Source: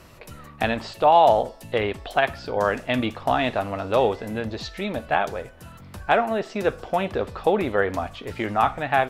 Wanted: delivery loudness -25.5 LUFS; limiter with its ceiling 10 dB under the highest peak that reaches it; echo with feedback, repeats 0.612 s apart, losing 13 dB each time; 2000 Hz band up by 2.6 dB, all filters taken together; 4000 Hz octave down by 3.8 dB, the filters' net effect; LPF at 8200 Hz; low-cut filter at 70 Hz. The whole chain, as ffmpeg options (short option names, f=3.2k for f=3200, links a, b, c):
-af "highpass=70,lowpass=8.2k,equalizer=f=2k:t=o:g=5,equalizer=f=4k:t=o:g=-7.5,alimiter=limit=-13dB:level=0:latency=1,aecho=1:1:612|1224|1836:0.224|0.0493|0.0108,volume=1dB"